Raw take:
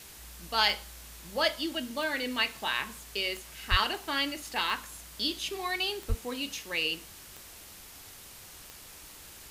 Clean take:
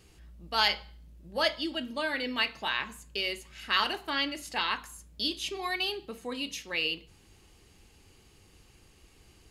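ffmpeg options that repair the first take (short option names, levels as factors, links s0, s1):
-filter_complex "[0:a]adeclick=t=4,asplit=3[s0][s1][s2];[s0]afade=t=out:st=3.7:d=0.02[s3];[s1]highpass=f=140:w=0.5412,highpass=f=140:w=1.3066,afade=t=in:st=3.7:d=0.02,afade=t=out:st=3.82:d=0.02[s4];[s2]afade=t=in:st=3.82:d=0.02[s5];[s3][s4][s5]amix=inputs=3:normalize=0,asplit=3[s6][s7][s8];[s6]afade=t=out:st=6.08:d=0.02[s9];[s7]highpass=f=140:w=0.5412,highpass=f=140:w=1.3066,afade=t=in:st=6.08:d=0.02,afade=t=out:st=6.2:d=0.02[s10];[s8]afade=t=in:st=6.2:d=0.02[s11];[s9][s10][s11]amix=inputs=3:normalize=0,afwtdn=0.004"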